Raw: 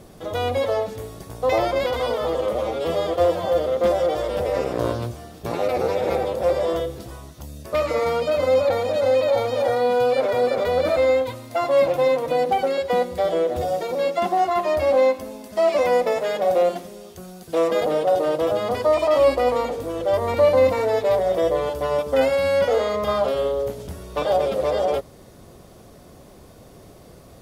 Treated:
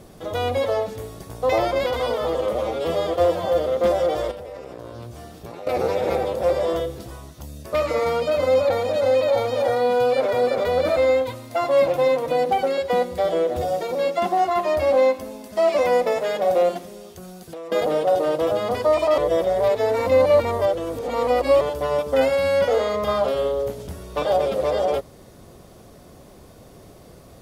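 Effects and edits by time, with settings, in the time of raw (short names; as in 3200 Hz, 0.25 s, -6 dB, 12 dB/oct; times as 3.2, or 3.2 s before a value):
4.31–5.67 compressor, threshold -33 dBFS
16.78–17.72 compressor, threshold -33 dBFS
19.18–21.61 reverse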